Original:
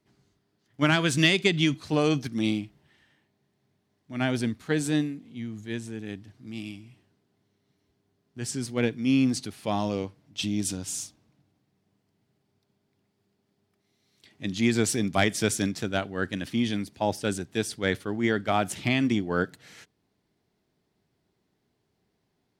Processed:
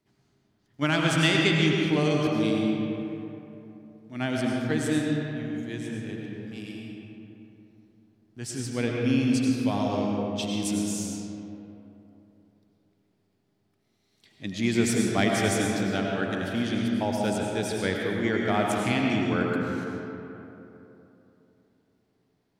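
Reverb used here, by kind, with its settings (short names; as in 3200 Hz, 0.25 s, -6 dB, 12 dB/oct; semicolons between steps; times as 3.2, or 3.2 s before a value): digital reverb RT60 3.2 s, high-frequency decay 0.45×, pre-delay 60 ms, DRR -1.5 dB; gain -3 dB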